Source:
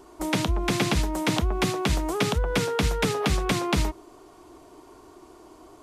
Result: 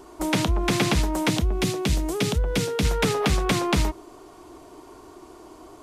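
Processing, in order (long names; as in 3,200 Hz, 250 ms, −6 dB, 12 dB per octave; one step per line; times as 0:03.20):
0:01.30–0:02.85: parametric band 1,100 Hz −9 dB 1.9 octaves
in parallel at −5.5 dB: soft clipping −25 dBFS, distortion −10 dB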